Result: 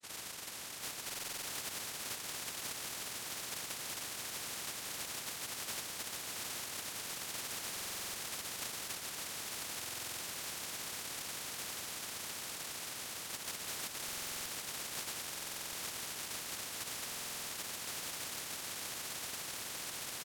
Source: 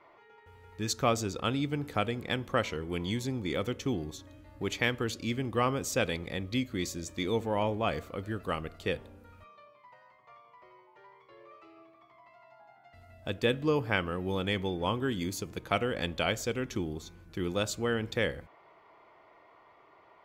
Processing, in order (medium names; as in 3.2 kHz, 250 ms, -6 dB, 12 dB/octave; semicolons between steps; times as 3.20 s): delay that grows with frequency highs late, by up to 699 ms; on a send: echo that smears into a reverb 1112 ms, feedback 76%, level -12 dB; on the sum: compression, threshold -41 dBFS, peak gain reduction 15.5 dB; bass shelf 460 Hz -11 dB; static phaser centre 620 Hz, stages 6; comb 6.8 ms, depth 95%; noise-vocoded speech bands 1; buffer glitch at 1.05/7.72/9.79/14.04/15.31/17.07 s, samples 2048, times 8; spectrum-flattening compressor 4:1; trim +5 dB